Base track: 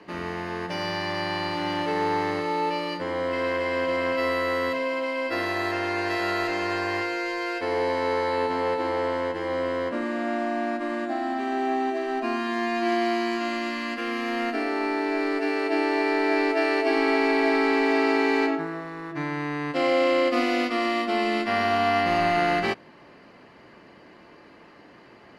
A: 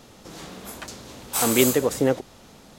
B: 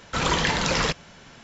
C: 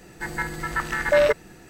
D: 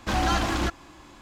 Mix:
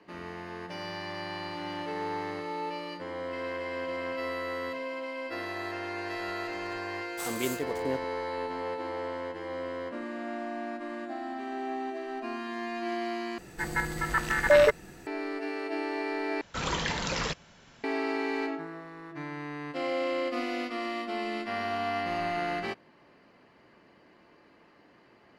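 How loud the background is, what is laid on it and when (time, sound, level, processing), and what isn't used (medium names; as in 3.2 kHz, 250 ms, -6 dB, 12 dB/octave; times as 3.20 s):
base track -9 dB
5.84 s: add A -13 dB + hysteresis with a dead band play -24 dBFS
13.38 s: replace with C -1.5 dB
16.41 s: replace with B -8 dB
not used: D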